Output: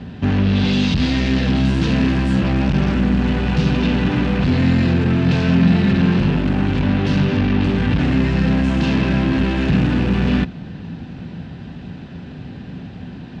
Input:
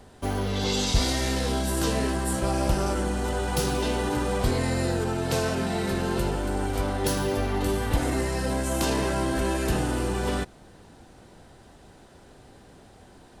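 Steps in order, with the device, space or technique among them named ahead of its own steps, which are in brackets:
low-pass filter 11,000 Hz
guitar amplifier (tube saturation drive 33 dB, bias 0.4; bass and treble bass +14 dB, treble +14 dB; loudspeaker in its box 80–3,600 Hz, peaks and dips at 170 Hz +10 dB, 250 Hz +8 dB, 1,700 Hz +6 dB, 2,600 Hz +8 dB)
0:01.55–0:02.35: high-shelf EQ 6,200 Hz +5 dB
level +8.5 dB

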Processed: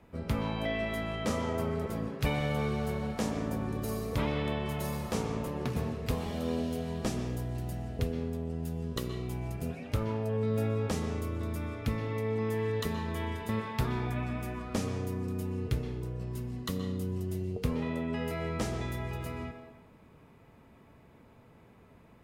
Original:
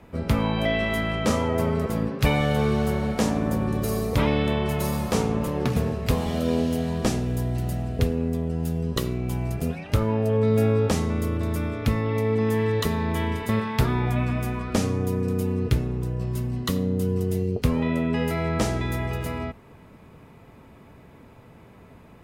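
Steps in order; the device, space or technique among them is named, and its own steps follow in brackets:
filtered reverb send (on a send: high-pass filter 220 Hz 12 dB per octave + low-pass filter 6,100 Hz 12 dB per octave + convolution reverb RT60 0.75 s, pre-delay 118 ms, DRR 7 dB)
on the sum: level −9 dB

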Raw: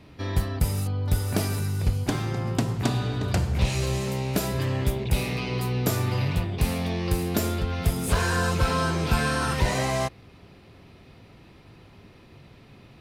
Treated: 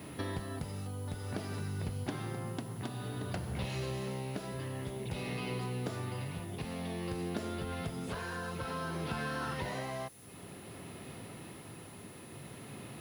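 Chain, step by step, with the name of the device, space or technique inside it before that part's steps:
medium wave at night (band-pass filter 120–4,100 Hz; downward compressor 6 to 1, threshold −40 dBFS, peak gain reduction 19 dB; amplitude tremolo 0.54 Hz, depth 31%; steady tone 10,000 Hz −62 dBFS; white noise bed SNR 23 dB)
notch filter 2,400 Hz, Q 17
level +5 dB

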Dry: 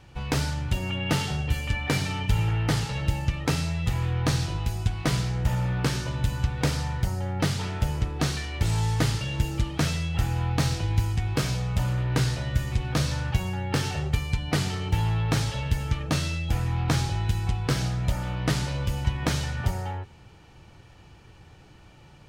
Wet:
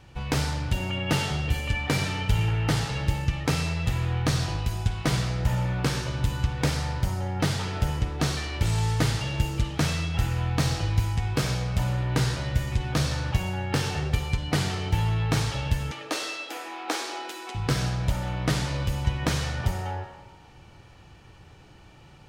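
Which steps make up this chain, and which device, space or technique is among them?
0:15.91–0:17.55: Butterworth high-pass 290 Hz 48 dB per octave
filtered reverb send (on a send: high-pass filter 410 Hz 12 dB per octave + low-pass filter 8,400 Hz 12 dB per octave + convolution reverb RT60 1.4 s, pre-delay 44 ms, DRR 5.5 dB)

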